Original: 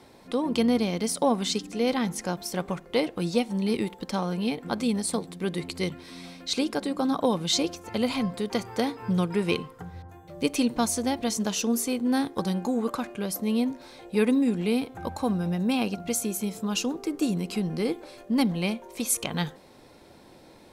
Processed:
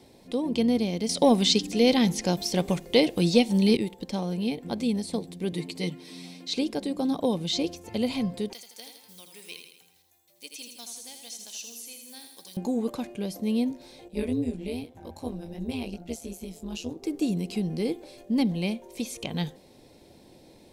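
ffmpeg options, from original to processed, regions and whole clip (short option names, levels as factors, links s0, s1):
-filter_complex "[0:a]asettb=1/sr,asplit=3[s0][s1][s2];[s0]atrim=end=1.094[s3];[s1]atrim=start=1.09:end=3.77,asetpts=PTS-STARTPTS,afade=t=in:d=0.004:c=qsin,afade=t=out:st=2.676:d=0.004:c=qsin,highshelf=f=3500:g=10.5,acontrast=48[s4];[s2]atrim=start=3.766[s5];[s3][s4]acrossfade=d=0.004:c1=hsin:c2=qsin[s6];[s6][s5]acrossfade=d=0.004:c1=qsin:c2=hsin,asettb=1/sr,asplit=3[s7][s8][s9];[s7]atrim=end=5.524[s10];[s8]atrim=start=5.52:end=6.55,asetpts=PTS-STARTPTS,afade=t=in:d=0.004:c=qsin,afade=t=out:st=1.026:d=0.004:c=qsin,highpass=160,aecho=1:1:6.6:0.65,atrim=end_sample=45423[s11];[s9]atrim=start=6.546[s12];[s10][s11]acrossfade=d=0.004:c1=hsin:c2=qsin[s13];[s13][s12]acrossfade=d=0.004:c1=qsin:c2=hsin,asettb=1/sr,asplit=3[s14][s15][s16];[s14]atrim=end=8.534[s17];[s15]atrim=start=8.53:end=12.57,asetpts=PTS-STARTPTS,afade=t=in:d=0.004:c=qsin,afade=t=out:st=4.036:d=0.004:c=qsin,acrusher=bits=8:mode=log:mix=0:aa=0.000001,aderivative,aecho=1:1:81|162|243|324|405|486:0.447|0.237|0.125|0.0665|0.0352|0.0187,atrim=end_sample=178164[s18];[s16]atrim=start=12.566[s19];[s17][s18]acrossfade=d=0.004:c1=hsin:c2=qsin[s20];[s20][s19]acrossfade=d=0.004:c1=qsin:c2=hsin,asettb=1/sr,asplit=3[s21][s22][s23];[s21]atrim=end=14.084[s24];[s22]atrim=start=14.08:end=17.03,asetpts=PTS-STARTPTS,afade=t=in:d=0.004:c=qsin,afade=t=out:st=2.946:d=0.004:c=qsin,flanger=delay=16.5:depth=4.4:speed=2.5,tremolo=f=160:d=0.75[s25];[s23]atrim=start=17.026[s26];[s24][s25]acrossfade=d=0.004:c1=hsin:c2=qsin[s27];[s27][s26]acrossfade=d=0.004:c1=qsin:c2=hsin,acrossover=split=5000[s28][s29];[s29]acompressor=threshold=0.00708:ratio=4:attack=1:release=60[s30];[s28][s30]amix=inputs=2:normalize=0,equalizer=f=1300:t=o:w=1:g=-13.5"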